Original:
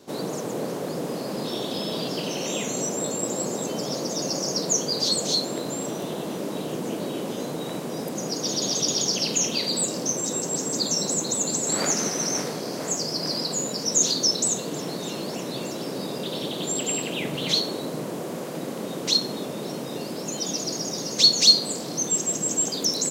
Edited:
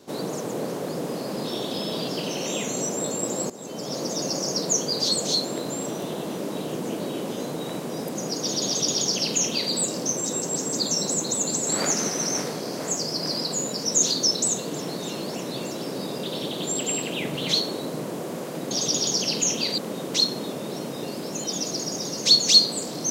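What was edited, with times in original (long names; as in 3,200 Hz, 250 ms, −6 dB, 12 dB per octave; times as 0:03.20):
0:03.50–0:04.04: fade in, from −16 dB
0:08.65–0:09.72: duplicate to 0:18.71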